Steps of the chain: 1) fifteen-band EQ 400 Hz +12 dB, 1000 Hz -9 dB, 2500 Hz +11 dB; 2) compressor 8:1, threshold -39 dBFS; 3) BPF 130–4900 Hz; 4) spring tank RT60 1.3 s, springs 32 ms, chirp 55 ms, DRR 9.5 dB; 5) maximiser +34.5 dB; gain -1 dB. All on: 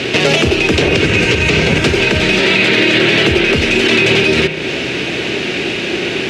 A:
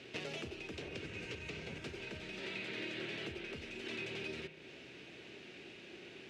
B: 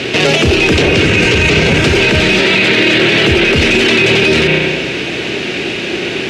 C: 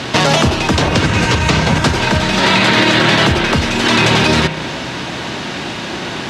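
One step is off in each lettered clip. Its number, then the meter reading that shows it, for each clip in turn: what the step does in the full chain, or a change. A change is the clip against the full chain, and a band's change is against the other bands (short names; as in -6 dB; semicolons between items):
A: 5, crest factor change +4.5 dB; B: 2, mean gain reduction 9.0 dB; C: 1, 1 kHz band +8.0 dB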